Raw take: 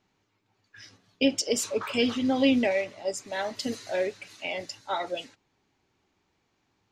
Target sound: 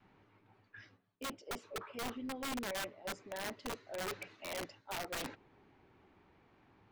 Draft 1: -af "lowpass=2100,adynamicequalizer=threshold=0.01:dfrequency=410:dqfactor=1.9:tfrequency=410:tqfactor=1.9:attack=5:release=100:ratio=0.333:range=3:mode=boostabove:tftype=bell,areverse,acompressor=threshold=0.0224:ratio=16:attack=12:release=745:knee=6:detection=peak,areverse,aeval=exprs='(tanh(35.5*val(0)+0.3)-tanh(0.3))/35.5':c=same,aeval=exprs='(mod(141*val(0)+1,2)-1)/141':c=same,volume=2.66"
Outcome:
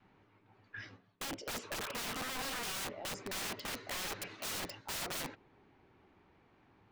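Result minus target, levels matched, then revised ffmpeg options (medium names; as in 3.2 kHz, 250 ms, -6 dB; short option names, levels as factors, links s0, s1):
compression: peak gain reduction -10.5 dB
-af "lowpass=2100,adynamicequalizer=threshold=0.01:dfrequency=410:dqfactor=1.9:tfrequency=410:tqfactor=1.9:attack=5:release=100:ratio=0.333:range=3:mode=boostabove:tftype=bell,areverse,acompressor=threshold=0.00631:ratio=16:attack=12:release=745:knee=6:detection=peak,areverse,aeval=exprs='(tanh(35.5*val(0)+0.3)-tanh(0.3))/35.5':c=same,aeval=exprs='(mod(141*val(0)+1,2)-1)/141':c=same,volume=2.66"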